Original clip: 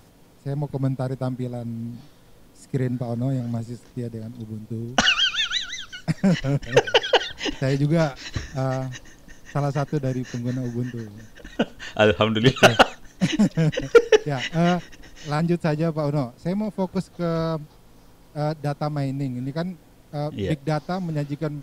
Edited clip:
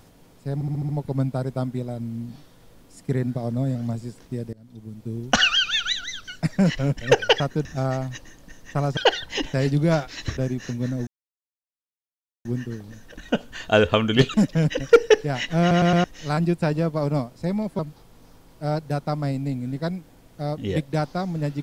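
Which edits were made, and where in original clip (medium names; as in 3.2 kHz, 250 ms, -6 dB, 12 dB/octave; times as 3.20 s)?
0.54 s: stutter 0.07 s, 6 plays
4.18–4.81 s: fade in, from -22 dB
7.05–8.45 s: swap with 9.77–10.02 s
10.72 s: insert silence 1.38 s
12.61–13.36 s: delete
14.62 s: stutter in place 0.11 s, 4 plays
16.81–17.53 s: delete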